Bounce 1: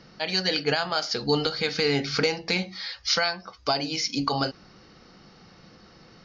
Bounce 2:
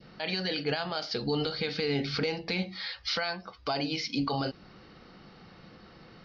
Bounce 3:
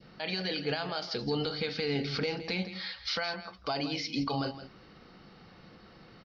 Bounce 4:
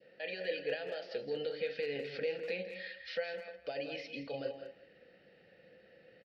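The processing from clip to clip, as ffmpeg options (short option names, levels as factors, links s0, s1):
-af "lowpass=f=4300:w=0.5412,lowpass=f=4300:w=1.3066,adynamicequalizer=threshold=0.01:dfrequency=1300:dqfactor=0.73:tfrequency=1300:tqfactor=0.73:attack=5:release=100:ratio=0.375:range=3.5:mode=cutabove:tftype=bell,alimiter=limit=0.0944:level=0:latency=1:release=41"
-af "aecho=1:1:166:0.224,volume=0.794"
-filter_complex "[0:a]asplit=3[s0][s1][s2];[s0]bandpass=f=530:t=q:w=8,volume=1[s3];[s1]bandpass=f=1840:t=q:w=8,volume=0.501[s4];[s2]bandpass=f=2480:t=q:w=8,volume=0.355[s5];[s3][s4][s5]amix=inputs=3:normalize=0,asubboost=boost=2.5:cutoff=210,asplit=2[s6][s7];[s7]adelay=200,highpass=300,lowpass=3400,asoftclip=type=hard:threshold=0.0133,volume=0.355[s8];[s6][s8]amix=inputs=2:normalize=0,volume=2"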